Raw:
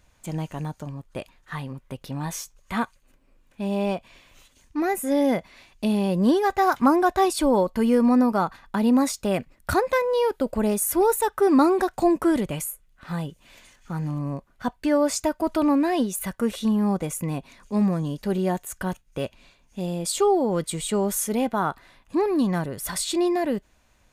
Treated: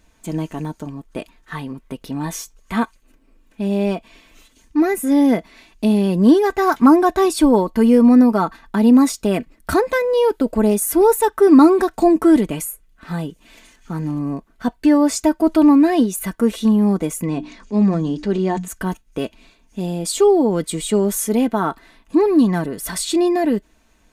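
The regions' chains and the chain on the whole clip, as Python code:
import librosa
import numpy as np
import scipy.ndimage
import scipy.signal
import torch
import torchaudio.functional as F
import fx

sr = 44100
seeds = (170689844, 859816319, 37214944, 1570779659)

y = fx.chain(x, sr, fx.lowpass(hz=7100.0, slope=24),
    fx.hum_notches(base_hz=60, count=5),
    fx.transient(attack_db=-2, sustain_db=4), at=(17.26, 18.68))
y = fx.peak_eq(y, sr, hz=320.0, db=14.0, octaves=0.3)
y = y + 0.53 * np.pad(y, (int(4.5 * sr / 1000.0), 0))[:len(y)]
y = F.gain(torch.from_numpy(y), 2.5).numpy()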